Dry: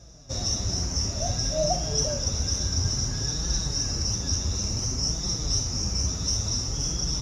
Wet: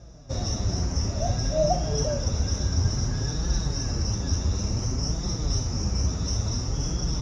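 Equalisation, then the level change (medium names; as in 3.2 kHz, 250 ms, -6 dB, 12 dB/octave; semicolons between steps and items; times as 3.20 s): low-pass 1.8 kHz 6 dB/octave; +3.5 dB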